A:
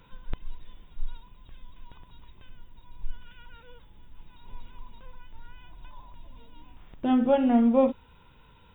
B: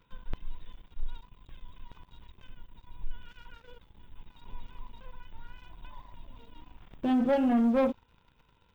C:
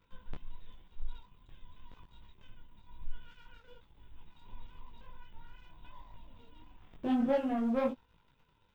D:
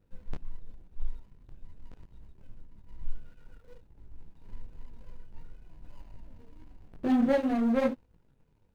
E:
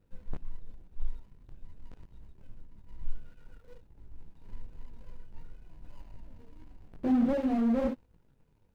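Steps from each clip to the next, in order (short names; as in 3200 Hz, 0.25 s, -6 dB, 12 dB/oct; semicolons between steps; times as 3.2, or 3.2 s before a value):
sample leveller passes 2; gain -8 dB
detuned doubles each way 34 cents; gain -1 dB
median filter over 41 samples; gain +5.5 dB
slew limiter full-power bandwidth 23 Hz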